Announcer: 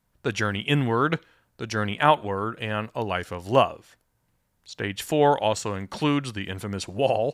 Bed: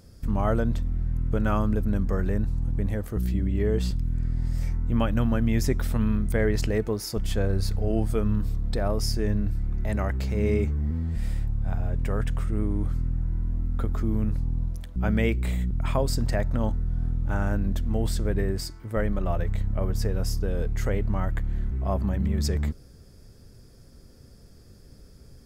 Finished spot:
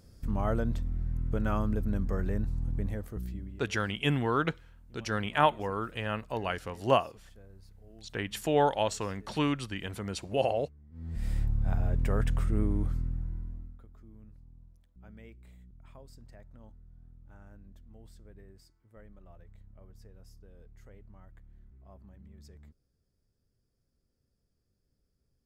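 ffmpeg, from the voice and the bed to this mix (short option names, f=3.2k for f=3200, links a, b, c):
-filter_complex "[0:a]adelay=3350,volume=-5.5dB[a];[1:a]volume=22dB,afade=t=out:st=2.77:d=0.91:silence=0.0668344,afade=t=in:st=10.91:d=0.5:silence=0.0421697,afade=t=out:st=12.58:d=1.22:silence=0.0501187[b];[a][b]amix=inputs=2:normalize=0"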